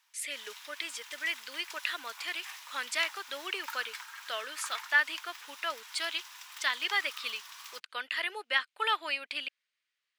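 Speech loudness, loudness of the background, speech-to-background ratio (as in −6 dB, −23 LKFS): −33.5 LKFS, −45.5 LKFS, 12.0 dB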